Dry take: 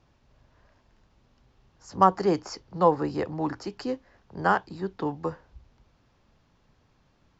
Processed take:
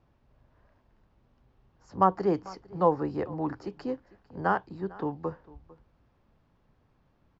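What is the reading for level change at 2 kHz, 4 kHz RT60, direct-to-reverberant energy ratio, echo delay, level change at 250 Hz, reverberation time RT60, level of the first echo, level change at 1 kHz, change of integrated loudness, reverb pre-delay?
−5.0 dB, no reverb audible, no reverb audible, 451 ms, −2.0 dB, no reverb audible, −21.5 dB, −3.5 dB, −3.0 dB, no reverb audible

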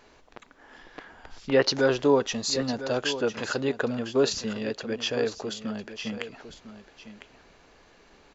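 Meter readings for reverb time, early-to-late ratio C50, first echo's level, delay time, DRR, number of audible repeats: no reverb audible, no reverb audible, −12.5 dB, 1,003 ms, no reverb audible, 1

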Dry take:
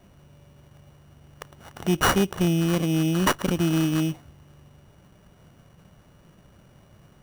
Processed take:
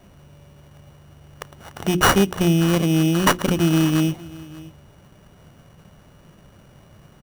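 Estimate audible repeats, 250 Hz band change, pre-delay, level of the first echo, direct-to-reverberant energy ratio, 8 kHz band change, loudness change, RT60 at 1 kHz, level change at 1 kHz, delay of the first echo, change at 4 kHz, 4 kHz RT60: 1, +4.5 dB, no reverb audible, −20.5 dB, no reverb audible, +5.0 dB, +4.5 dB, no reverb audible, +5.0 dB, 588 ms, +5.0 dB, no reverb audible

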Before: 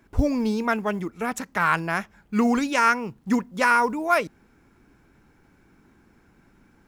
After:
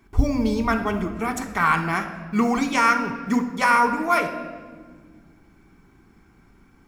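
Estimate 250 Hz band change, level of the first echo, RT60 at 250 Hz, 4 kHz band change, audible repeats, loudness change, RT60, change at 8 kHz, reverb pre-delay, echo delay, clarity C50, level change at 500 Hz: +1.5 dB, no echo audible, 3.3 s, +2.0 dB, no echo audible, +1.5 dB, 1.7 s, +1.5 dB, 3 ms, no echo audible, 9.0 dB, −0.5 dB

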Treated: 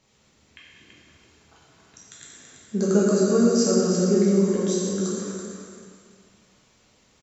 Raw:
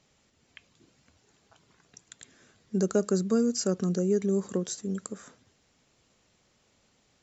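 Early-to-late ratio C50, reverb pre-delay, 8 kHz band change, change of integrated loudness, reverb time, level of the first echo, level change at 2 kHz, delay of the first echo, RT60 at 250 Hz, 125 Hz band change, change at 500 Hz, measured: −2.5 dB, 7 ms, can't be measured, +7.0 dB, 2.0 s, −7.0 dB, +8.0 dB, 332 ms, 2.0 s, +6.5 dB, +7.5 dB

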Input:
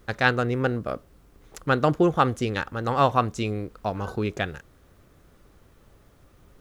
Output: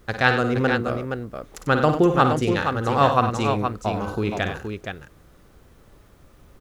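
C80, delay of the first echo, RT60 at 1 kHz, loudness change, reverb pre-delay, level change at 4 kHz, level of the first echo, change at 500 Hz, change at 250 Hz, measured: no reverb audible, 54 ms, no reverb audible, +3.0 dB, no reverb audible, +3.5 dB, −8.0 dB, +3.5 dB, +4.0 dB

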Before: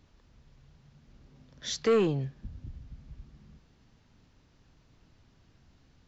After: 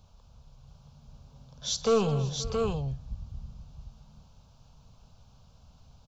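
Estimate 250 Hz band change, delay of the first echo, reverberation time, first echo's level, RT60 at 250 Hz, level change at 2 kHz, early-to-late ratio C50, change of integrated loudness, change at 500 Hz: 0.0 dB, 53 ms, no reverb audible, −18.0 dB, no reverb audible, −4.0 dB, no reverb audible, 0.0 dB, +1.0 dB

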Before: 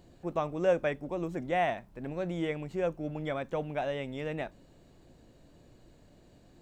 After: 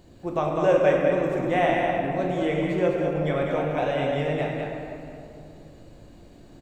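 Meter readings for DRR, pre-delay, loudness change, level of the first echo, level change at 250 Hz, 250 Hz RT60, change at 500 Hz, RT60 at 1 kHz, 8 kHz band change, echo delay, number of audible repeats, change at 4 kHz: −2.5 dB, 13 ms, +9.0 dB, −5.0 dB, +9.5 dB, 3.0 s, +9.5 dB, 2.6 s, can't be measured, 200 ms, 1, +8.0 dB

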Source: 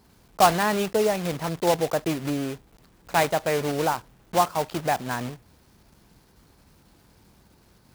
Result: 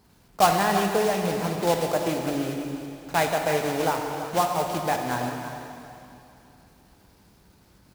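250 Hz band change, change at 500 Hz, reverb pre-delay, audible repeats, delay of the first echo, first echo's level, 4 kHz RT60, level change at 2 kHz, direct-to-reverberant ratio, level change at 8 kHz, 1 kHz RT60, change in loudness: +0.5 dB, 0.0 dB, 6 ms, 1, 332 ms, −11.5 dB, 2.7 s, 0.0 dB, 2.0 dB, 0.0 dB, 2.9 s, −0.5 dB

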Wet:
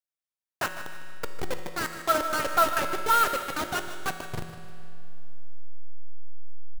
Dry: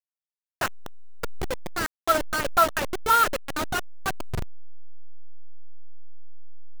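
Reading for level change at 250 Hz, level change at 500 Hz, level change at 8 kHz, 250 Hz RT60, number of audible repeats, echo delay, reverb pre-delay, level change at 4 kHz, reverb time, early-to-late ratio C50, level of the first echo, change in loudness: −2.0 dB, −2.0 dB, −1.5 dB, 2.6 s, 2, 153 ms, 5 ms, −1.5 dB, 2.6 s, 6.5 dB, −13.0 dB, −1.5 dB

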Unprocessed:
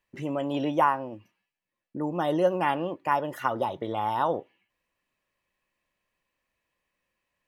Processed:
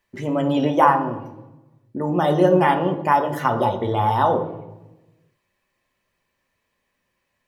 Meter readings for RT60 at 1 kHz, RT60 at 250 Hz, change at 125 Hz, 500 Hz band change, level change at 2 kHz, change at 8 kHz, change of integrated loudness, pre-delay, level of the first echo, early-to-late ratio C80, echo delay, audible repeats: 0.90 s, 1.3 s, +13.0 dB, +8.0 dB, +7.0 dB, can't be measured, +8.0 dB, 3 ms, no echo audible, 13.0 dB, no echo audible, no echo audible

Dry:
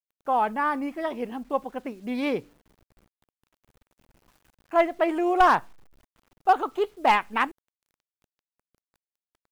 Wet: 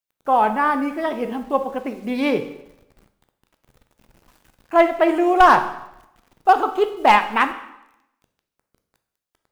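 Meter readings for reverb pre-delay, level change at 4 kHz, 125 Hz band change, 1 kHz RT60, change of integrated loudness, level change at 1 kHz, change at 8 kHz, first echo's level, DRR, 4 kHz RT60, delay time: 5 ms, +6.5 dB, can't be measured, 0.85 s, +6.5 dB, +6.5 dB, can't be measured, no echo audible, 8.5 dB, 0.80 s, no echo audible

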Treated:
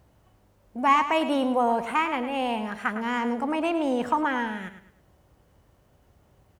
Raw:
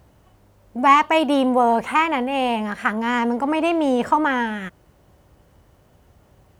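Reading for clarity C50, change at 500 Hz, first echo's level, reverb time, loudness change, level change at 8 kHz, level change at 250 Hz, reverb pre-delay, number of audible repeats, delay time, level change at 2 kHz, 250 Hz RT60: no reverb audible, −6.0 dB, −11.0 dB, no reverb audible, −6.0 dB, −6.0 dB, −6.0 dB, no reverb audible, 3, 106 ms, −6.0 dB, no reverb audible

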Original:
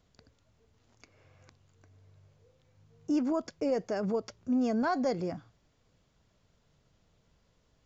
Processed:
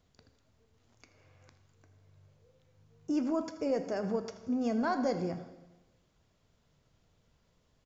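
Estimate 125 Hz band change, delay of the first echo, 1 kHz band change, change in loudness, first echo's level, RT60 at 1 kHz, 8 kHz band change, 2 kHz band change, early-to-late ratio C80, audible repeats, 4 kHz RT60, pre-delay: −1.0 dB, 81 ms, −1.5 dB, −2.0 dB, −15.5 dB, 1.0 s, can't be measured, −1.5 dB, 11.0 dB, 1, 1.0 s, 6 ms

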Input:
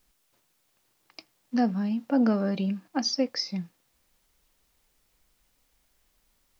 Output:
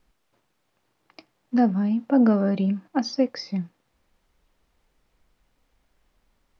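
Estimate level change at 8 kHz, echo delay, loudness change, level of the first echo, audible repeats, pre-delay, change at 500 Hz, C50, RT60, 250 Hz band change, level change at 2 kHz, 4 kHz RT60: can't be measured, no echo audible, +4.5 dB, no echo audible, no echo audible, no reverb audible, +4.5 dB, no reverb audible, no reverb audible, +5.0 dB, +1.5 dB, no reverb audible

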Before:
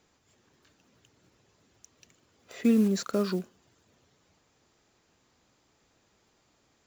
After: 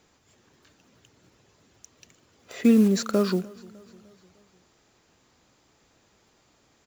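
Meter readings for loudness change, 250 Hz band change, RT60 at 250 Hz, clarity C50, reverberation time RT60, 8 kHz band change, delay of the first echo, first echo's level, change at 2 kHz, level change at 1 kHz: +5.0 dB, +5.0 dB, no reverb audible, no reverb audible, no reverb audible, +5.0 dB, 302 ms, −23.0 dB, +5.0 dB, +5.0 dB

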